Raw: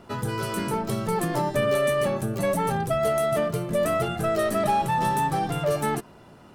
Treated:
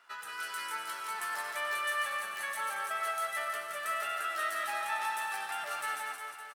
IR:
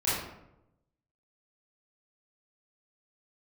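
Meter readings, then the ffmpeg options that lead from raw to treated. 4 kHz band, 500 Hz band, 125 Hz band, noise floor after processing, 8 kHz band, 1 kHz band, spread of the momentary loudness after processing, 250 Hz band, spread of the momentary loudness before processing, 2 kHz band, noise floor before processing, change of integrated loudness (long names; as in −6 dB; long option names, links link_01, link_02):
−4.0 dB, −21.0 dB, below −40 dB, −45 dBFS, −5.5 dB, −8.5 dB, 5 LU, below −30 dB, 5 LU, 0.0 dB, −50 dBFS, −9.5 dB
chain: -filter_complex "[0:a]highpass=frequency=1500:width_type=q:width=2.1,aecho=1:1:170|357|562.7|789|1038:0.631|0.398|0.251|0.158|0.1,asplit=2[link_01][link_02];[1:a]atrim=start_sample=2205,adelay=66[link_03];[link_02][link_03]afir=irnorm=-1:irlink=0,volume=-16.5dB[link_04];[link_01][link_04]amix=inputs=2:normalize=0,volume=-8.5dB"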